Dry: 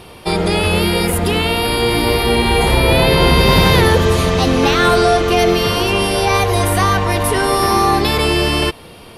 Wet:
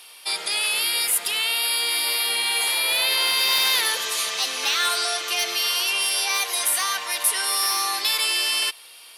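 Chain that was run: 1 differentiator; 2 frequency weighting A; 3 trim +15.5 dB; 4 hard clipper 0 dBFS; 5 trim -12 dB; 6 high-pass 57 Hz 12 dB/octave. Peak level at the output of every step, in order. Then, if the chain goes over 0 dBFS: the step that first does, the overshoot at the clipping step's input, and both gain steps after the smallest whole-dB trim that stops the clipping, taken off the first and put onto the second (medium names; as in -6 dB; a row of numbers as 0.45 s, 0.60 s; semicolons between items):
-7.0 dBFS, -8.5 dBFS, +7.0 dBFS, 0.0 dBFS, -12.0 dBFS, -11.5 dBFS; step 3, 7.0 dB; step 3 +8.5 dB, step 5 -5 dB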